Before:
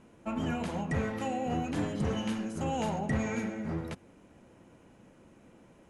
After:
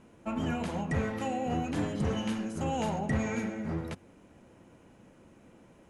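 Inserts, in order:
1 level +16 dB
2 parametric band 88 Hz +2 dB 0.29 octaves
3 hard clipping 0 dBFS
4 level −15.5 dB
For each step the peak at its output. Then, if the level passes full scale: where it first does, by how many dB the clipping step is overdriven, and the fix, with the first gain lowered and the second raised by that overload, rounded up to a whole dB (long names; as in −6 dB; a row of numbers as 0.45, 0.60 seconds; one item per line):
−3.5, −3.5, −3.5, −19.0 dBFS
no step passes full scale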